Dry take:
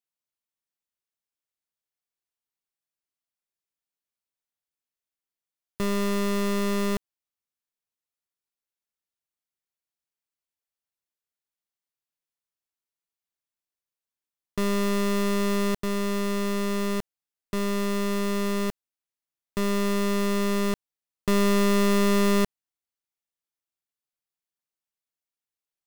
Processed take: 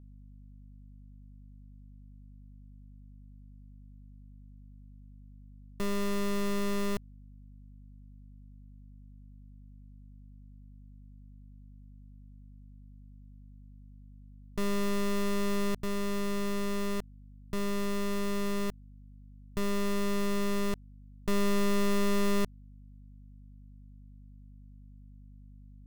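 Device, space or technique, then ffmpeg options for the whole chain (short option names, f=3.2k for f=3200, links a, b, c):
valve amplifier with mains hum: -af "aeval=exprs='(tanh(15.8*val(0)+0.7)-tanh(0.7))/15.8':c=same,aeval=exprs='val(0)+0.00398*(sin(2*PI*50*n/s)+sin(2*PI*2*50*n/s)/2+sin(2*PI*3*50*n/s)/3+sin(2*PI*4*50*n/s)/4+sin(2*PI*5*50*n/s)/5)':c=same,volume=-2dB"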